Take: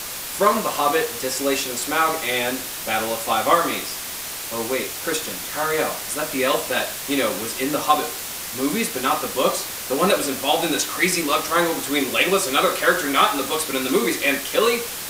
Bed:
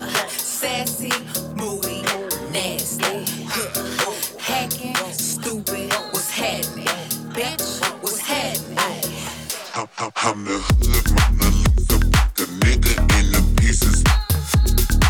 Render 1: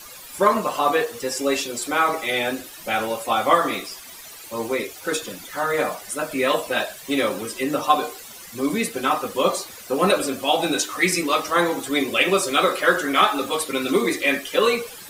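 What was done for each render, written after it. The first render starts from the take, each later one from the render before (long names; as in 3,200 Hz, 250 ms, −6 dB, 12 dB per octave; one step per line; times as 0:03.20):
broadband denoise 14 dB, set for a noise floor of −31 dBFS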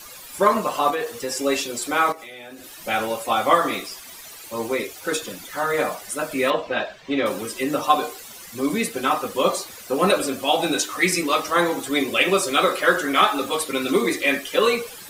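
0:00.90–0:01.41: downward compressor, threshold −21 dBFS
0:02.12–0:02.82: downward compressor 10 to 1, threshold −36 dBFS
0:06.50–0:07.26: high-frequency loss of the air 190 metres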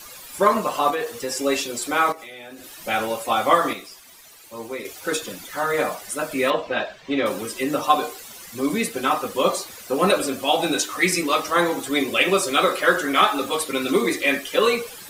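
0:03.73–0:04.85: clip gain −7 dB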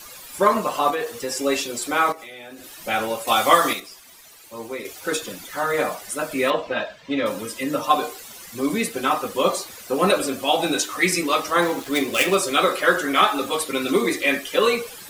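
0:03.27–0:03.80: high-shelf EQ 2,300 Hz +10 dB
0:06.73–0:07.91: notch comb filter 380 Hz
0:11.62–0:12.35: gap after every zero crossing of 0.057 ms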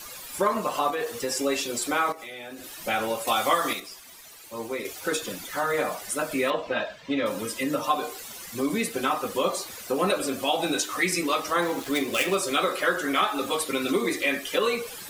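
downward compressor 2 to 1, threshold −25 dBFS, peak gain reduction 9 dB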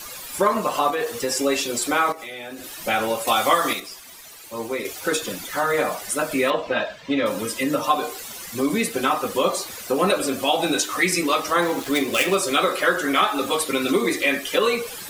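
level +4.5 dB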